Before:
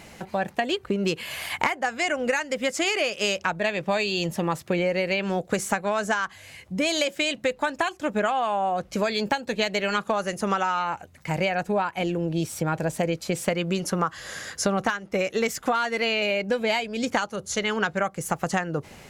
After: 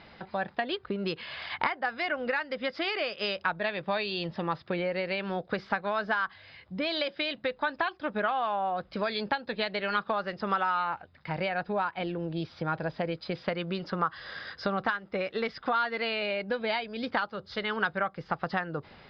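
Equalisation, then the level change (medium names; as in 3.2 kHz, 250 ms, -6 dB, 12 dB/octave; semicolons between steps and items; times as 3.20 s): rippled Chebyshev low-pass 5.1 kHz, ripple 6 dB; -1.5 dB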